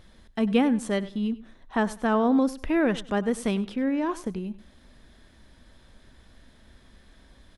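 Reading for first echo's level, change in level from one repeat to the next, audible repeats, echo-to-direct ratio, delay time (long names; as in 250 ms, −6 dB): −17.5 dB, −12.5 dB, 2, −17.5 dB, 98 ms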